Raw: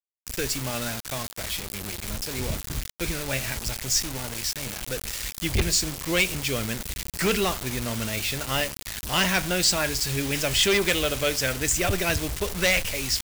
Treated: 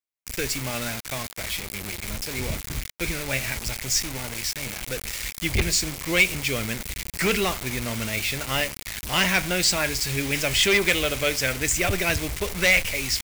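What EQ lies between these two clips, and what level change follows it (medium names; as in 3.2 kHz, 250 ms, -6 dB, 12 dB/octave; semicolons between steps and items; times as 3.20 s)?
peaking EQ 2.2 kHz +6.5 dB 0.38 oct; 0.0 dB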